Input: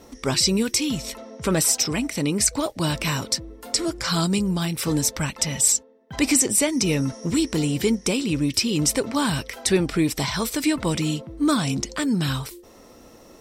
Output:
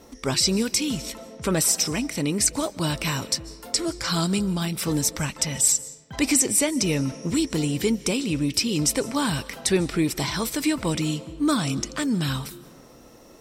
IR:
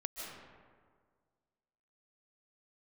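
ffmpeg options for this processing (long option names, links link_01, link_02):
-filter_complex "[0:a]asplit=2[link_01][link_02];[1:a]atrim=start_sample=2205,highshelf=frequency=4000:gain=8.5[link_03];[link_02][link_03]afir=irnorm=-1:irlink=0,volume=-17dB[link_04];[link_01][link_04]amix=inputs=2:normalize=0,volume=-2.5dB"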